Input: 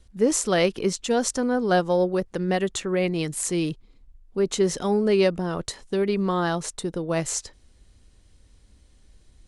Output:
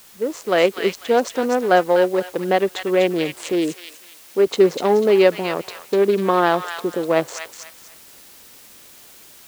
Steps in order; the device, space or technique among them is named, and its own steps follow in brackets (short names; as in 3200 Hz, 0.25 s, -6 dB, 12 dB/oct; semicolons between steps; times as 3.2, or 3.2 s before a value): Wiener smoothing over 25 samples; dictaphone (BPF 370–3200 Hz; AGC gain up to 14.5 dB; wow and flutter 23 cents; white noise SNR 27 dB); 3.52–4.47 HPF 250 Hz 6 dB/oct; thin delay 0.247 s, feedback 30%, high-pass 1600 Hz, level -4 dB; gain -1 dB